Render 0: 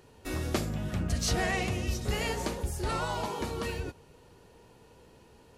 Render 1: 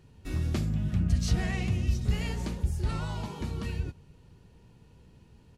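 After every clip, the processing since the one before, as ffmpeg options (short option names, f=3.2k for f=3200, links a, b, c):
-af "firequalizer=gain_entry='entry(170,0);entry(260,-7);entry(480,-15);entry(2500,-10);entry(13000,-16)':delay=0.05:min_phase=1,volume=5.5dB"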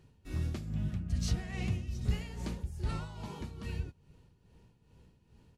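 -af "tremolo=f=2.4:d=0.65,volume=-3.5dB"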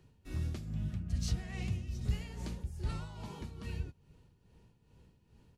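-filter_complex "[0:a]acrossover=split=160|3000[a][b][c];[b]acompressor=threshold=-43dB:ratio=2.5[d];[a][d][c]amix=inputs=3:normalize=0,volume=-1.5dB"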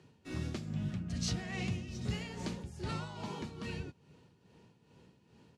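-af "highpass=160,lowpass=7.6k,volume=6dB"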